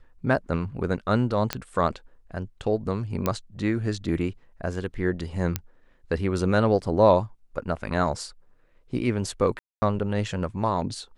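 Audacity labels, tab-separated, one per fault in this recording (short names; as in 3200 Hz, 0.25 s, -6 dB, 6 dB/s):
1.530000	1.530000	pop -9 dBFS
3.260000	3.260000	pop -10 dBFS
5.560000	5.560000	pop -10 dBFS
9.590000	9.820000	gap 0.23 s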